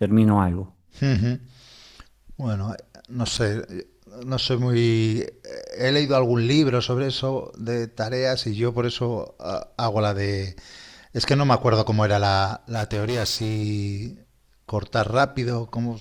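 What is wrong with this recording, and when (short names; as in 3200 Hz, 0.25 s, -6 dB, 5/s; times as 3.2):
3.37–3.38 gap 7.1 ms
12.74–13.64 clipped -21 dBFS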